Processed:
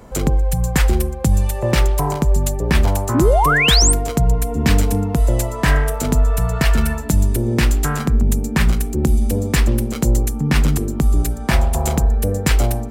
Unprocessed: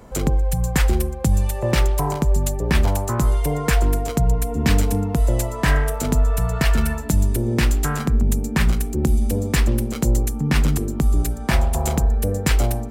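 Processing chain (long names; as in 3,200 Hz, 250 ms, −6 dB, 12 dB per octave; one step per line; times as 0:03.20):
sound drawn into the spectrogram rise, 0:03.14–0:03.93, 240–9,500 Hz −18 dBFS
level +2.5 dB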